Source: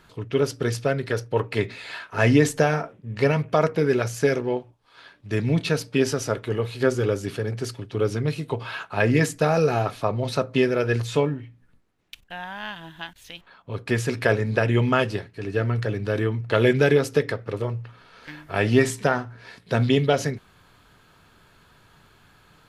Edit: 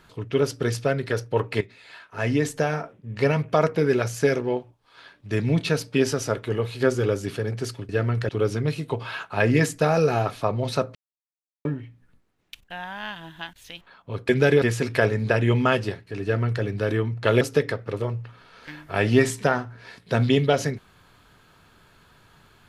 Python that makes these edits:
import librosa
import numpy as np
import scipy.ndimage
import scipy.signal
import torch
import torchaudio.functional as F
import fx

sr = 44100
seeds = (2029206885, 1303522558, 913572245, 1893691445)

y = fx.edit(x, sr, fx.fade_in_from(start_s=1.61, length_s=1.87, floor_db=-14.0),
    fx.silence(start_s=10.55, length_s=0.7),
    fx.duplicate(start_s=15.5, length_s=0.4, to_s=7.89),
    fx.move(start_s=16.68, length_s=0.33, to_s=13.89), tone=tone)